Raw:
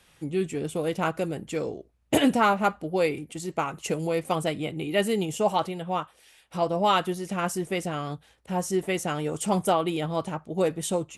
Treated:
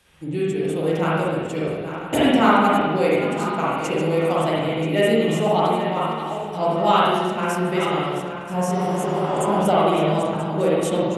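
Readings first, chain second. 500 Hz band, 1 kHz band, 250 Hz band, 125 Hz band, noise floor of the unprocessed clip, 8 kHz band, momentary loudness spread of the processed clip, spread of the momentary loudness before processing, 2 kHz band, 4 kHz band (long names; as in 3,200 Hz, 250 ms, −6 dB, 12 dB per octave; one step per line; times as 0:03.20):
+7.0 dB, +7.0 dB, +6.5 dB, +7.0 dB, −61 dBFS, −0.5 dB, 8 LU, 9 LU, +6.0 dB, +5.0 dB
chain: feedback delay that plays each chunk backwards 491 ms, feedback 57%, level −10 dB
spring reverb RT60 1.3 s, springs 44/57 ms, chirp 45 ms, DRR −6 dB
healed spectral selection 0:08.77–0:09.54, 230–6,100 Hz both
level −1 dB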